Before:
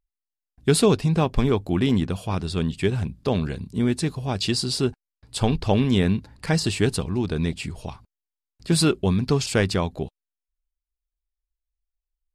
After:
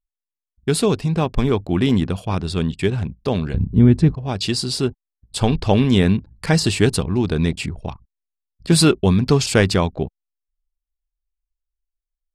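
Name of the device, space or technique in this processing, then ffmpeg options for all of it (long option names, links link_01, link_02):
voice memo with heavy noise removal: -filter_complex "[0:a]asettb=1/sr,asplit=3[link_01][link_02][link_03];[link_01]atrim=end=3.544[link_04];[link_02]atrim=start=3.54:end=4.15,asetpts=PTS-STARTPTS,afade=type=in:duration=0.004:curve=qsin,afade=type=out:start_time=0.606:duration=0.004:curve=qsin,aemphasis=mode=reproduction:type=riaa[link_05];[link_03]atrim=start=4.146[link_06];[link_04][link_05]acrossfade=duration=0.004:curve1=hsin:curve2=qsin[link_07];[link_07][link_06]acrossfade=duration=0.004:curve1=qsin:curve2=hsin,anlmdn=0.398,dynaudnorm=framelen=300:gausssize=9:maxgain=11.5dB,volume=-1dB"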